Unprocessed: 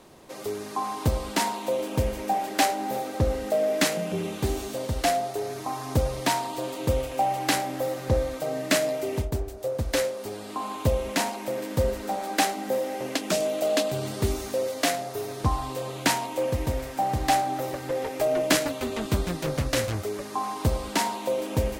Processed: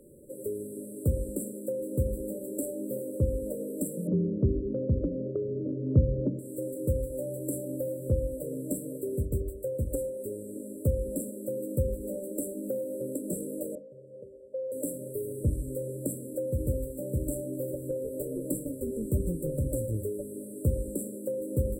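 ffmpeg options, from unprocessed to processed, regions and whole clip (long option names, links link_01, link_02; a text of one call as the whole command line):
ffmpeg -i in.wav -filter_complex "[0:a]asettb=1/sr,asplit=3[link_01][link_02][link_03];[link_01]atrim=end=4.074[link_04];[link_02]atrim=start=4.07:end=6.39,asetpts=PTS-STARTPTS,afade=type=in:duration=0.004:curve=qsin,afade=type=out:start_time=2.316:duration=0.004:curve=qsin,lowpass=frequency=1200:width=0.5412,lowpass=frequency=1200:width=1.3066,equalizer=frequency=240:width=0.46:gain=10[link_05];[link_03]atrim=start=6.386[link_06];[link_04][link_05]acrossfade=duration=0.004:curve1=hsin:curve2=qsin[link_07];[link_07][link_06]acrossfade=duration=0.004:curve1=qsin:curve2=hsin,asettb=1/sr,asplit=3[link_08][link_09][link_10];[link_08]atrim=end=13.754[link_11];[link_09]atrim=start=13.75:end=14.72,asetpts=PTS-STARTPTS,afade=type=in:duration=0.004:curve=qsin,afade=type=out:start_time=0.966:duration=0.004:curve=qsin,lowshelf=frequency=200:width_type=q:width=1.5:gain=11,acrossover=split=320|4900[link_12][link_13][link_14];[link_12]acompressor=threshold=-30dB:ratio=4[link_15];[link_13]acompressor=threshold=-32dB:ratio=4[link_16];[link_14]acompressor=threshold=-54dB:ratio=4[link_17];[link_15][link_16][link_17]amix=inputs=3:normalize=0,asplit=3[link_18][link_19][link_20];[link_18]bandpass=frequency=530:width_type=q:width=8,volume=0dB[link_21];[link_19]bandpass=frequency=1840:width_type=q:width=8,volume=-6dB[link_22];[link_20]bandpass=frequency=2480:width_type=q:width=8,volume=-9dB[link_23];[link_21][link_22][link_23]amix=inputs=3:normalize=0[link_24];[link_10]atrim=start=14.716[link_25];[link_11][link_24]acrossfade=duration=0.004:curve1=hsin:curve2=qsin[link_26];[link_26][link_25]acrossfade=duration=0.004:curve1=qsin:curve2=hsin,afftfilt=real='re*(1-between(b*sr/4096,610,7500))':imag='im*(1-between(b*sr/4096,610,7500))':win_size=4096:overlap=0.75,bandreject=frequency=50:width_type=h:width=6,bandreject=frequency=100:width_type=h:width=6,bandreject=frequency=150:width_type=h:width=6,bandreject=frequency=200:width_type=h:width=6,bandreject=frequency=250:width_type=h:width=6,bandreject=frequency=300:width_type=h:width=6,acrossover=split=170[link_27][link_28];[link_28]acompressor=threshold=-30dB:ratio=6[link_29];[link_27][link_29]amix=inputs=2:normalize=0" out.wav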